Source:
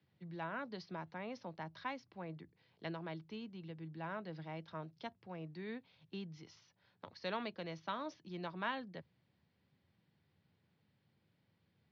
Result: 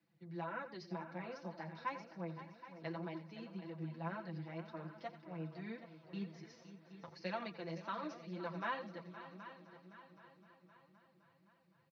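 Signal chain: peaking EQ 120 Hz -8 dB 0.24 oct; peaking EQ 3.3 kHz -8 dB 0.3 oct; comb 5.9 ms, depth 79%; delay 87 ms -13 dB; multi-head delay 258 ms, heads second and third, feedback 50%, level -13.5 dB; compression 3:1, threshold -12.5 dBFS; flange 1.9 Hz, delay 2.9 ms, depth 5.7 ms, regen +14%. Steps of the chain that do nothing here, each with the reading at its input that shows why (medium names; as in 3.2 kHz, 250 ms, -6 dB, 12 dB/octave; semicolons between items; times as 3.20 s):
compression, threshold -12.5 dBFS: peak at its input -24.5 dBFS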